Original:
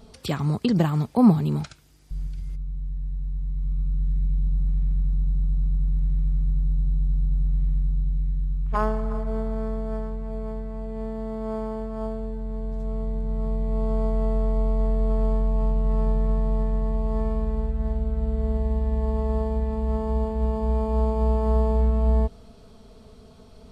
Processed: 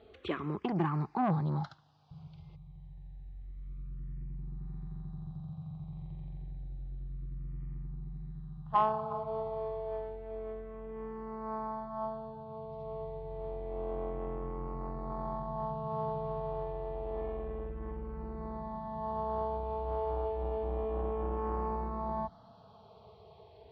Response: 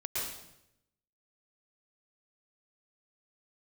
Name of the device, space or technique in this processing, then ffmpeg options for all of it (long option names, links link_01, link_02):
barber-pole phaser into a guitar amplifier: -filter_complex "[0:a]asplit=2[link_01][link_02];[link_02]afreqshift=-0.29[link_03];[link_01][link_03]amix=inputs=2:normalize=1,asoftclip=type=tanh:threshold=-20dB,highpass=91,equalizer=frequency=230:width_type=q:width=4:gain=-9,equalizer=frequency=360:width_type=q:width=4:gain=6,equalizer=frequency=800:width_type=q:width=4:gain=10,equalizer=frequency=1100:width_type=q:width=4:gain=6,lowpass=frequency=4000:width=0.5412,lowpass=frequency=4000:width=1.3066,volume=-4dB"